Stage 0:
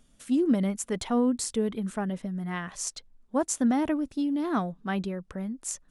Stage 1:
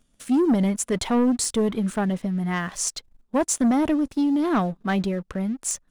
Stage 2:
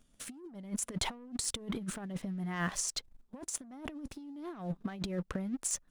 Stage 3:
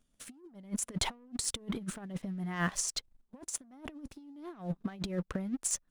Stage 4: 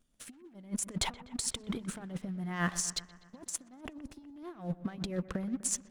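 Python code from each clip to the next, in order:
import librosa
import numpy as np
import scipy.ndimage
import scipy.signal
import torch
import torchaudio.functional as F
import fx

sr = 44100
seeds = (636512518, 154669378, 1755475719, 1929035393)

y1 = fx.leveller(x, sr, passes=2)
y2 = fx.over_compress(y1, sr, threshold_db=-28.0, ratio=-0.5)
y2 = y2 * 10.0 ** (-9.0 / 20.0)
y3 = fx.upward_expand(y2, sr, threshold_db=-50.0, expansion=1.5)
y3 = y3 * 10.0 ** (3.0 / 20.0)
y4 = fx.vibrato(y3, sr, rate_hz=1.2, depth_cents=9.6)
y4 = fx.echo_wet_lowpass(y4, sr, ms=124, feedback_pct=63, hz=2400.0, wet_db=-15.5)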